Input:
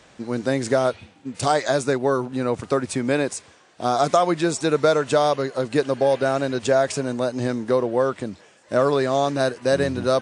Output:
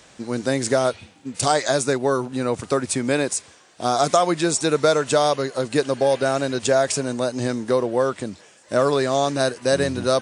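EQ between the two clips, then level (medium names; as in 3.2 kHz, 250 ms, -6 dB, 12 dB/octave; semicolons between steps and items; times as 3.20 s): treble shelf 5 kHz +10 dB; 0.0 dB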